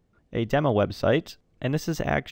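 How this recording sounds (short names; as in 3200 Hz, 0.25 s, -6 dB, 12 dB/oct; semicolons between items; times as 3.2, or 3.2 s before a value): noise floor -68 dBFS; spectral tilt -5.5 dB/oct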